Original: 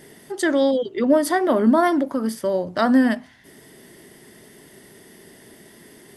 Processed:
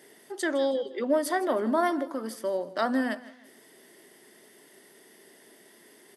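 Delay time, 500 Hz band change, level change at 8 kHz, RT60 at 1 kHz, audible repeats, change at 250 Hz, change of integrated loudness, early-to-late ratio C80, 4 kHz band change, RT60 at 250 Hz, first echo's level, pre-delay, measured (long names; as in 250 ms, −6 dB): 159 ms, −7.0 dB, −6.5 dB, no reverb audible, 2, −11.5 dB, −8.5 dB, no reverb audible, −6.5 dB, no reverb audible, −17.5 dB, no reverb audible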